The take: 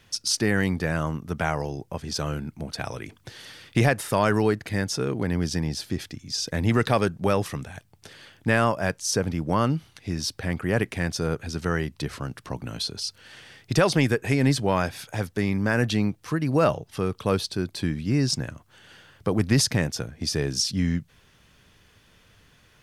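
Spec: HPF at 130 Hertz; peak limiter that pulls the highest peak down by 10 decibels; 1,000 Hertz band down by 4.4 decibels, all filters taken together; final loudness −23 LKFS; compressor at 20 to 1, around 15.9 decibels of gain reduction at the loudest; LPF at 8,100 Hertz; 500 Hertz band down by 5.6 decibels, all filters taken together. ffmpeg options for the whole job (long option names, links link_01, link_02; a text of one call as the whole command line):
ffmpeg -i in.wav -af "highpass=130,lowpass=8100,equalizer=frequency=500:width_type=o:gain=-6,equalizer=frequency=1000:width_type=o:gain=-4,acompressor=threshold=-34dB:ratio=20,volume=18.5dB,alimiter=limit=-11.5dB:level=0:latency=1" out.wav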